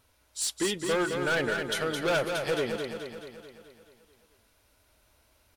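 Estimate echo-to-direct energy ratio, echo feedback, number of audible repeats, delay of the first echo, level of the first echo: -4.0 dB, 57%, 7, 0.215 s, -5.5 dB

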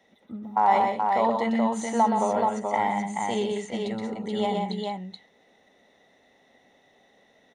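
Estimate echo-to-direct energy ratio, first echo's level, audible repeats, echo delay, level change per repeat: -1.0 dB, -5.0 dB, 3, 0.123 s, no steady repeat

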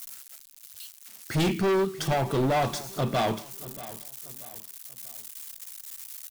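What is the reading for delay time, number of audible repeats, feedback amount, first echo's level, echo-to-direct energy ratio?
0.635 s, 3, 40%, -17.0 dB, -16.5 dB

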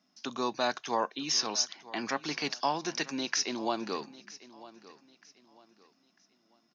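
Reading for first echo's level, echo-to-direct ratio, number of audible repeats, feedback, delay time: -18.5 dB, -18.0 dB, 2, 32%, 0.947 s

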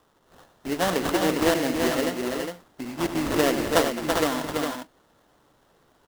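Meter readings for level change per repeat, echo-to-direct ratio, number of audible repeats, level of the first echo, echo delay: no steady repeat, -2.0 dB, 4, -11.5 dB, 96 ms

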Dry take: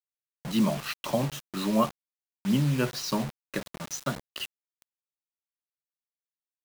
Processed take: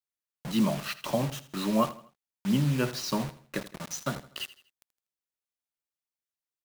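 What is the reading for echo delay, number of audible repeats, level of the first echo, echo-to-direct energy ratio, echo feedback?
81 ms, 3, -16.5 dB, -16.0 dB, 39%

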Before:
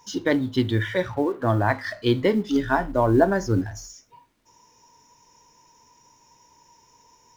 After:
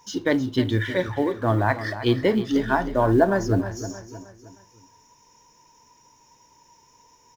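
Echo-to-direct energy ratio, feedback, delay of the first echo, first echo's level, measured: -11.5 dB, 43%, 0.312 s, -12.5 dB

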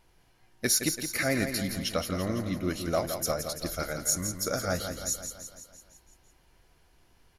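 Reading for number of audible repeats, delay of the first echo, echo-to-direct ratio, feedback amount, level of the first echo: 6, 0.168 s, -6.0 dB, 58%, -8.0 dB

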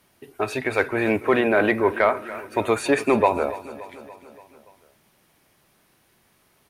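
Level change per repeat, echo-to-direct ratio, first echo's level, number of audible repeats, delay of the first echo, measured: -4.5 dB, -14.5 dB, -16.5 dB, 4, 0.287 s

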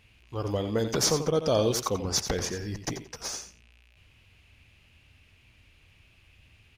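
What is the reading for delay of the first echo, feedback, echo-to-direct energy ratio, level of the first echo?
88 ms, 16%, -10.0 dB, -10.0 dB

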